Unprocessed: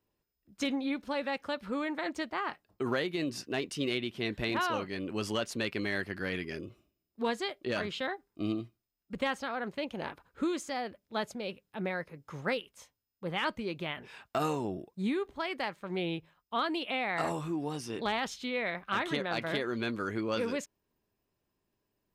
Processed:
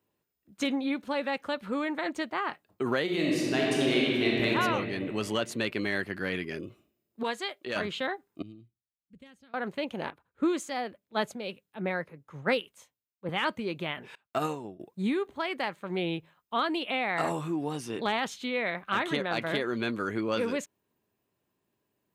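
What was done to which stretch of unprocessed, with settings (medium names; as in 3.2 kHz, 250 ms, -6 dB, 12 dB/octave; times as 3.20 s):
3.03–4.46 s: reverb throw, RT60 2.6 s, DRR -4 dB
7.23–7.76 s: bass shelf 450 Hz -10 dB
8.42–9.54 s: amplifier tone stack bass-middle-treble 10-0-1
10.10–13.29 s: three bands expanded up and down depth 70%
14.15–14.80 s: upward expansion 2.5:1, over -44 dBFS
whole clip: high-pass 100 Hz; peaking EQ 5.2 kHz -6.5 dB 0.33 oct; trim +3 dB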